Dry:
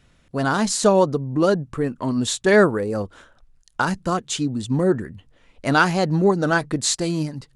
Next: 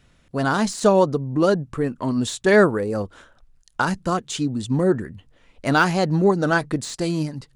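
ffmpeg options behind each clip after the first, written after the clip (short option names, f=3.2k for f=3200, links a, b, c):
-af "deesser=0.5"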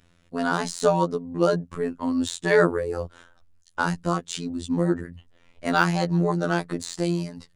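-af "afftfilt=real='hypot(re,im)*cos(PI*b)':imag='0':win_size=2048:overlap=0.75"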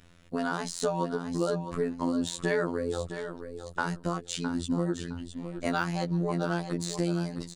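-filter_complex "[0:a]acompressor=threshold=-33dB:ratio=3,asplit=2[a][b];[b]aecho=0:1:662|1324|1986:0.335|0.0837|0.0209[c];[a][c]amix=inputs=2:normalize=0,volume=3.5dB"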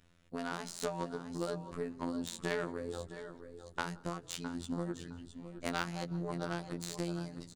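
-filter_complex "[0:a]asplit=6[a][b][c][d][e][f];[b]adelay=171,afreqshift=-33,volume=-21dB[g];[c]adelay=342,afreqshift=-66,volume=-25.3dB[h];[d]adelay=513,afreqshift=-99,volume=-29.6dB[i];[e]adelay=684,afreqshift=-132,volume=-33.9dB[j];[f]adelay=855,afreqshift=-165,volume=-38.2dB[k];[a][g][h][i][j][k]amix=inputs=6:normalize=0,aeval=exprs='0.282*(cos(1*acos(clip(val(0)/0.282,-1,1)))-cos(1*PI/2))+0.0501*(cos(3*acos(clip(val(0)/0.282,-1,1)))-cos(3*PI/2))':c=same,volume=-3.5dB"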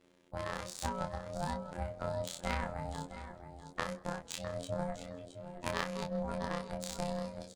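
-filter_complex "[0:a]aeval=exprs='val(0)*sin(2*PI*360*n/s)':c=same,asplit=2[a][b];[b]adelay=26,volume=-5.5dB[c];[a][c]amix=inputs=2:normalize=0,volume=2dB"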